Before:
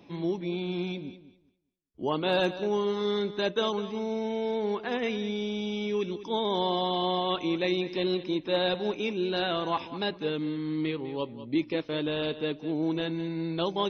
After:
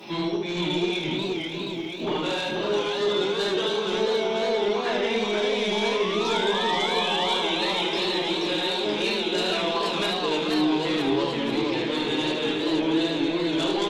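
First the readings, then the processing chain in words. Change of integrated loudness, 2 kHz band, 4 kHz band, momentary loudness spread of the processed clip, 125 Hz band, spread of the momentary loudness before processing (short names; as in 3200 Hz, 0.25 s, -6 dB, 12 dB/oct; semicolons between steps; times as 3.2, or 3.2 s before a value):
+5.5 dB, +8.5 dB, +9.0 dB, 4 LU, +1.0 dB, 5 LU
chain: HPF 140 Hz; tilt +2 dB/oct; notches 50/100/150/200 Hz; compressor 16:1, threshold -40 dBFS, peak gain reduction 18.5 dB; shoebox room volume 58 m³, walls mixed, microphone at 1.3 m; sine folder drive 3 dB, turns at -26.5 dBFS; painted sound rise, 5.72–7.67, 830–4300 Hz -40 dBFS; flange 0.2 Hz, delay 5.4 ms, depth 8.3 ms, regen -63%; echo 75 ms -5.5 dB; warbling echo 0.482 s, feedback 68%, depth 177 cents, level -4 dB; gain +8 dB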